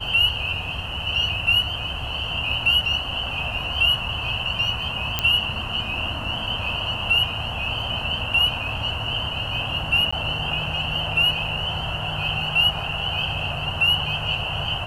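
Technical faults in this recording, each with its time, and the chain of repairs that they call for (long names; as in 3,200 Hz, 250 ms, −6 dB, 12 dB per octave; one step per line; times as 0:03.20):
0:05.19: click −5 dBFS
0:10.11–0:10.12: drop-out 15 ms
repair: click removal
repair the gap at 0:10.11, 15 ms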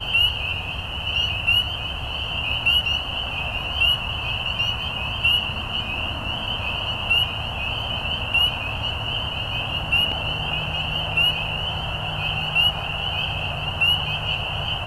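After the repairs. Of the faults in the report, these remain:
none of them is left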